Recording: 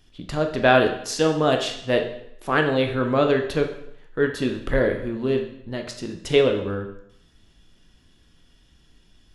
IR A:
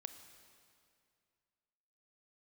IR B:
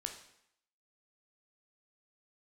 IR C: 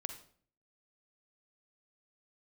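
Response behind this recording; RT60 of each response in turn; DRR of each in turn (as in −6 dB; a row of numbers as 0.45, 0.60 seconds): B; 2.3, 0.75, 0.50 seconds; 8.5, 4.0, 7.0 decibels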